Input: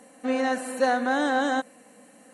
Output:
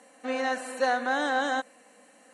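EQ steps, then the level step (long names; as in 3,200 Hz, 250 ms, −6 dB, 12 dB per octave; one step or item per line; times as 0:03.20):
high-pass filter 600 Hz 6 dB per octave
low-pass filter 8,100 Hz 12 dB per octave
0.0 dB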